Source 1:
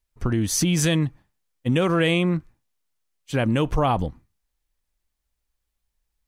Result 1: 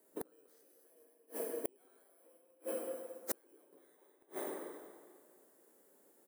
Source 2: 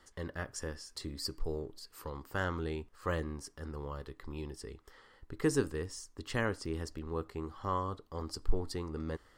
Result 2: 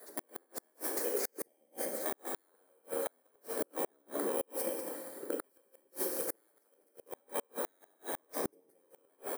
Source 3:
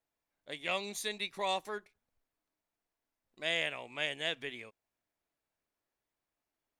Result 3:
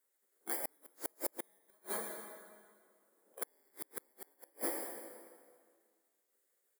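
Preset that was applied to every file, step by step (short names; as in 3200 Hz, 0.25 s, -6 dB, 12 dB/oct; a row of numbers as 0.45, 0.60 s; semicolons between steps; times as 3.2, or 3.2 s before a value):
FFT order left unsorted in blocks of 16 samples; compressor 3:1, threshold -34 dBFS; band shelf 3800 Hz -12.5 dB; echo 0.195 s -8 dB; spectral gate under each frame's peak -15 dB weak; HPF 280 Hz 24 dB/oct; limiter -33 dBFS; resonant low shelf 690 Hz +10.5 dB, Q 1.5; plate-style reverb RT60 1.9 s, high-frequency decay 0.8×, DRR 1.5 dB; flipped gate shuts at -34 dBFS, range -40 dB; gain +13.5 dB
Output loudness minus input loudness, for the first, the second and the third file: -21.0, +0.5, -6.0 LU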